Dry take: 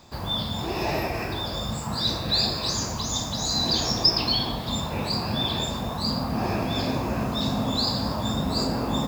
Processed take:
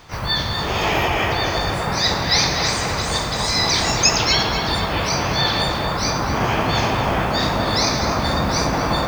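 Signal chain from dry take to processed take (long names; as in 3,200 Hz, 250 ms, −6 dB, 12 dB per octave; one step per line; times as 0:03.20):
octave-band graphic EQ 250/2,000/8,000 Hz −10/+7/−10 dB
pitch-shifted copies added −12 semitones −6 dB, +4 semitones −1 dB
tape delay 248 ms, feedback 85%, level −3 dB, low-pass 2,100 Hz
level +4 dB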